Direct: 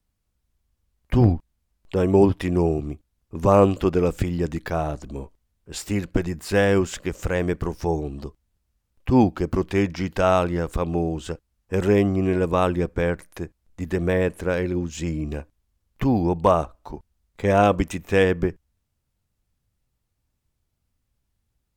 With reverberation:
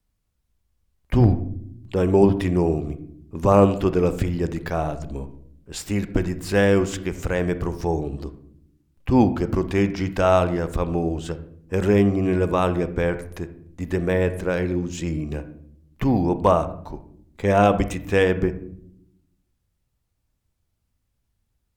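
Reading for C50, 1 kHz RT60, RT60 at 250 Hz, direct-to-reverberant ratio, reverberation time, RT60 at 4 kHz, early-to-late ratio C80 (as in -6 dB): 13.0 dB, 0.50 s, 1.3 s, 11.5 dB, 0.70 s, 0.40 s, 16.5 dB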